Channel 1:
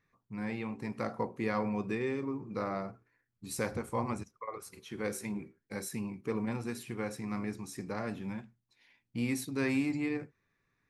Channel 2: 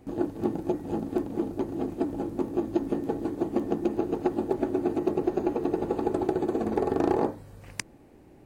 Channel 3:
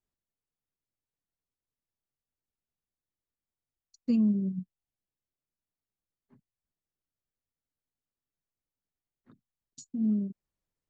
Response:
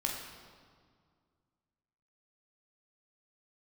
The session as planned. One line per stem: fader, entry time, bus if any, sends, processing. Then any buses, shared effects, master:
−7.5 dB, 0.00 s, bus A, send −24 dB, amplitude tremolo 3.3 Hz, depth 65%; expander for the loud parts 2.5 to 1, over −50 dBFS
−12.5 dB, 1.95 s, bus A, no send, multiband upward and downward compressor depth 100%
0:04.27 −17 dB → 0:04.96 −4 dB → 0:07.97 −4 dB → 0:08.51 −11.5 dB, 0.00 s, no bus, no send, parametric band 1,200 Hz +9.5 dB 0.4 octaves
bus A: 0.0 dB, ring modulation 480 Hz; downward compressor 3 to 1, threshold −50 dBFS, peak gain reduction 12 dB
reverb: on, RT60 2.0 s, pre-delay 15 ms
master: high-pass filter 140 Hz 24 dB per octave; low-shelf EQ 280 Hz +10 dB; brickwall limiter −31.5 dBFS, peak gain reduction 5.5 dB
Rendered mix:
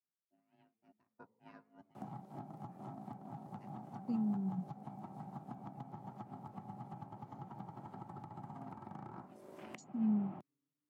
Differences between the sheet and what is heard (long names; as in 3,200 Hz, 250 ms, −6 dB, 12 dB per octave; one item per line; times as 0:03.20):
stem 1 −7.5 dB → −19.0 dB
master: missing brickwall limiter −31.5 dBFS, peak gain reduction 5.5 dB